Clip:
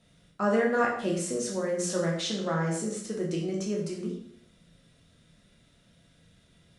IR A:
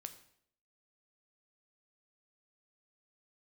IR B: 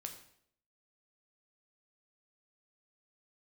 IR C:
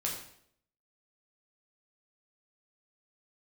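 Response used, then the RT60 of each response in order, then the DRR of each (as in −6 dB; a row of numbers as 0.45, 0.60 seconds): C; 0.65, 0.65, 0.65 seconds; 8.0, 4.0, −2.5 decibels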